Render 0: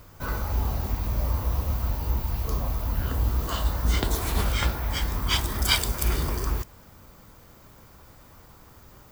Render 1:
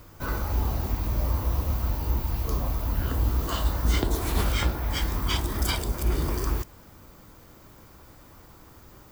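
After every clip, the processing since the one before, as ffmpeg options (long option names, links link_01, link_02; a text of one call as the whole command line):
ffmpeg -i in.wav -filter_complex "[0:a]equalizer=frequency=320:width_type=o:width=0.44:gain=5,acrossover=split=1000[link_01][link_02];[link_02]alimiter=limit=-18.5dB:level=0:latency=1:release=373[link_03];[link_01][link_03]amix=inputs=2:normalize=0" out.wav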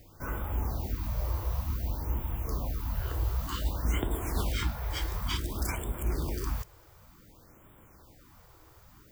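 ffmpeg -i in.wav -af "afftfilt=real='re*(1-between(b*sr/1024,200*pow(5300/200,0.5+0.5*sin(2*PI*0.55*pts/sr))/1.41,200*pow(5300/200,0.5+0.5*sin(2*PI*0.55*pts/sr))*1.41))':imag='im*(1-between(b*sr/1024,200*pow(5300/200,0.5+0.5*sin(2*PI*0.55*pts/sr))/1.41,200*pow(5300/200,0.5+0.5*sin(2*PI*0.55*pts/sr))*1.41))':win_size=1024:overlap=0.75,volume=-5.5dB" out.wav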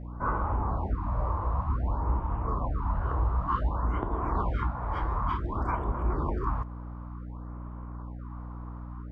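ffmpeg -i in.wav -af "alimiter=limit=-23dB:level=0:latency=1:release=405,lowpass=frequency=1100:width_type=q:width=3.7,aeval=exprs='val(0)+0.00794*(sin(2*PI*60*n/s)+sin(2*PI*2*60*n/s)/2+sin(2*PI*3*60*n/s)/3+sin(2*PI*4*60*n/s)/4+sin(2*PI*5*60*n/s)/5)':channel_layout=same,volume=4dB" out.wav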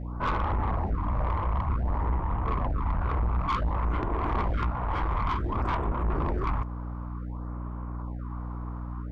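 ffmpeg -i in.wav -af "aeval=exprs='(tanh(25.1*val(0)+0.3)-tanh(0.3))/25.1':channel_layout=same,volume=5.5dB" out.wav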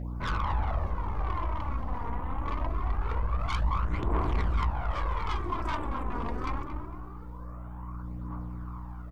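ffmpeg -i in.wav -filter_complex "[0:a]crystalizer=i=3.5:c=0,asplit=2[link_01][link_02];[link_02]adelay=227,lowpass=frequency=1500:poles=1,volume=-6dB,asplit=2[link_03][link_04];[link_04]adelay=227,lowpass=frequency=1500:poles=1,volume=0.48,asplit=2[link_05][link_06];[link_06]adelay=227,lowpass=frequency=1500:poles=1,volume=0.48,asplit=2[link_07][link_08];[link_08]adelay=227,lowpass=frequency=1500:poles=1,volume=0.48,asplit=2[link_09][link_10];[link_10]adelay=227,lowpass=frequency=1500:poles=1,volume=0.48,asplit=2[link_11][link_12];[link_12]adelay=227,lowpass=frequency=1500:poles=1,volume=0.48[link_13];[link_01][link_03][link_05][link_07][link_09][link_11][link_13]amix=inputs=7:normalize=0,aphaser=in_gain=1:out_gain=1:delay=4.3:decay=0.52:speed=0.24:type=triangular,volume=-6.5dB" out.wav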